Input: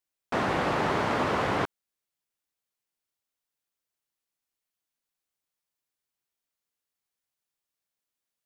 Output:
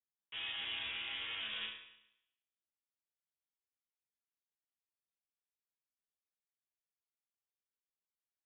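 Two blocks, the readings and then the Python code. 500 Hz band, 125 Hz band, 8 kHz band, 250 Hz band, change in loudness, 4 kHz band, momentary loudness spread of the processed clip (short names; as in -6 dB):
-33.0 dB, -32.5 dB, under -30 dB, -32.5 dB, -12.0 dB, +1.0 dB, 10 LU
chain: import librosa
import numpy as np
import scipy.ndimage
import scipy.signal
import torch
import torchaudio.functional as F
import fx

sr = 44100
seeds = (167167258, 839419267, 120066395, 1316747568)

y = fx.resonator_bank(x, sr, root=46, chord='major', decay_s=0.79)
y = fx.freq_invert(y, sr, carrier_hz=3600)
y = y * 10.0 ** (4.0 / 20.0)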